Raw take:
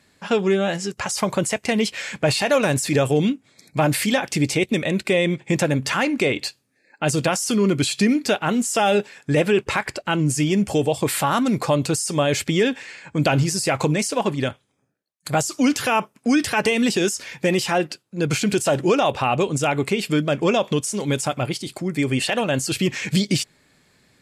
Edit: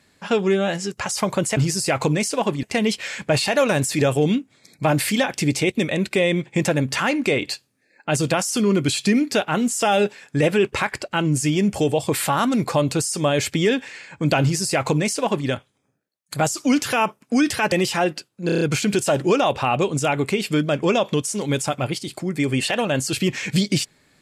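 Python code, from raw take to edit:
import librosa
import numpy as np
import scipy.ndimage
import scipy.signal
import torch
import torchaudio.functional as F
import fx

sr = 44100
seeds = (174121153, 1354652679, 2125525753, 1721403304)

y = fx.edit(x, sr, fx.duplicate(start_s=13.36, length_s=1.06, to_s=1.57),
    fx.cut(start_s=16.66, length_s=0.8),
    fx.stutter(start_s=18.2, slice_s=0.03, count=6), tone=tone)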